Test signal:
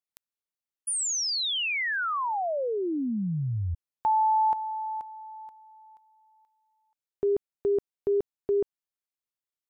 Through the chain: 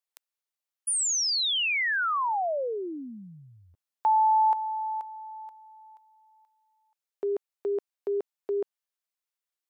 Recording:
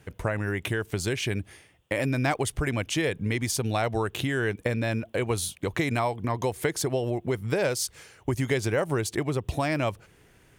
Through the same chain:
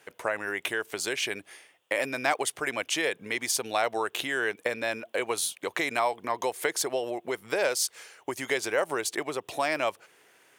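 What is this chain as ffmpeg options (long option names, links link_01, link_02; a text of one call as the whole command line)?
ffmpeg -i in.wav -af "highpass=510,volume=2dB" out.wav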